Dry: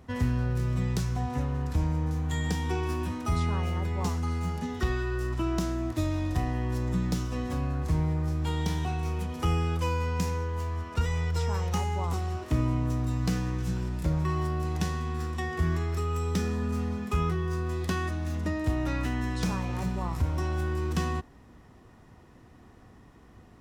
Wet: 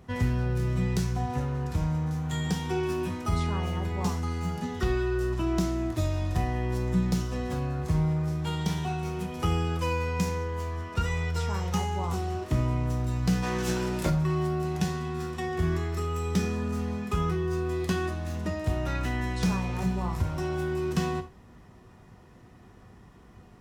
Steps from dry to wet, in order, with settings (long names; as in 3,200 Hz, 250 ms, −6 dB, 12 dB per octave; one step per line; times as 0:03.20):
0:13.42–0:14.09: ceiling on every frequency bin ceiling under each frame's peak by 17 dB
reverb whose tail is shaped and stops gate 120 ms falling, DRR 5.5 dB